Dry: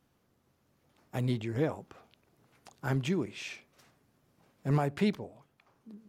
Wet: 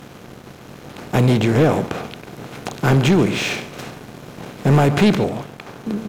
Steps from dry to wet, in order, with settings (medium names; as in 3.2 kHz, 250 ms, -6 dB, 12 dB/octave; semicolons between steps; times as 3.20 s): spectral levelling over time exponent 0.6; delay 140 ms -16 dB; waveshaping leveller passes 2; trim +8 dB